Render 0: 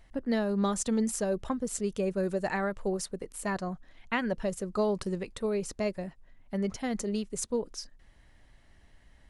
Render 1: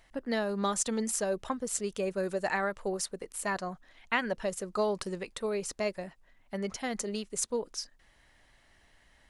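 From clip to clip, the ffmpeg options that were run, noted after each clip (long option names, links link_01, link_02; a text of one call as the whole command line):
ffmpeg -i in.wav -af "lowshelf=frequency=360:gain=-11.5,volume=3dB" out.wav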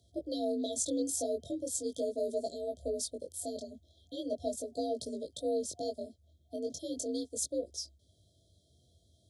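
ffmpeg -i in.wav -af "afftfilt=real='re*(1-between(b*sr/4096,650,3100))':imag='im*(1-between(b*sr/4096,650,3100))':win_size=4096:overlap=0.75,afreqshift=57,flanger=delay=17.5:depth=5.3:speed=0.39,volume=1dB" out.wav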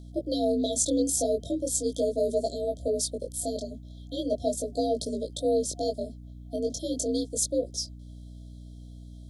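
ffmpeg -i in.wav -af "aeval=exprs='val(0)+0.00316*(sin(2*PI*60*n/s)+sin(2*PI*2*60*n/s)/2+sin(2*PI*3*60*n/s)/3+sin(2*PI*4*60*n/s)/4+sin(2*PI*5*60*n/s)/5)':channel_layout=same,volume=7.5dB" out.wav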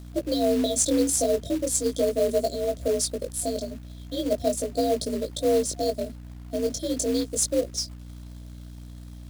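ffmpeg -i in.wav -af "acrusher=bits=4:mode=log:mix=0:aa=0.000001,volume=3dB" out.wav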